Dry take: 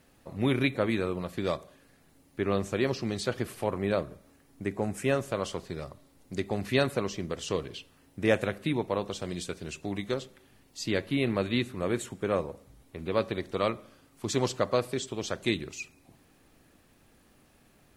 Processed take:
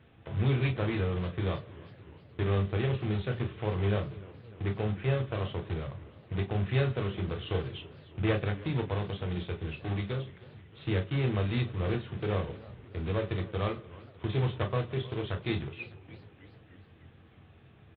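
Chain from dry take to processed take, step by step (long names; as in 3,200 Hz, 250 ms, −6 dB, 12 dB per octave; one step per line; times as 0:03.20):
one scale factor per block 3 bits
in parallel at +3 dB: downward compressor, threshold −41 dBFS, peak gain reduction 21 dB
on the sum: asymmetric clip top −26 dBFS
on a send at −4.5 dB: convolution reverb, pre-delay 3 ms
on the sum: downsampling to 8,000 Hz
feedback echo with a swinging delay time 306 ms, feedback 64%, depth 204 cents, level −19.5 dB
level −7.5 dB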